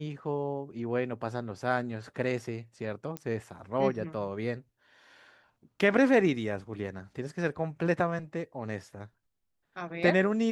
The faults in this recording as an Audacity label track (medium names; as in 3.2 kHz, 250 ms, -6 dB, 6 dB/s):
3.170000	3.170000	pop -21 dBFS